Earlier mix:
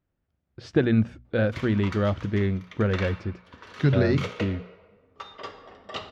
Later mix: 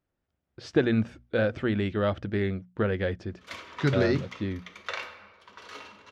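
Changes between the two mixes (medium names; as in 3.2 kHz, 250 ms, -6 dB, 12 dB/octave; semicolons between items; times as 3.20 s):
background: entry +1.95 s; master: add tone controls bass -6 dB, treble +3 dB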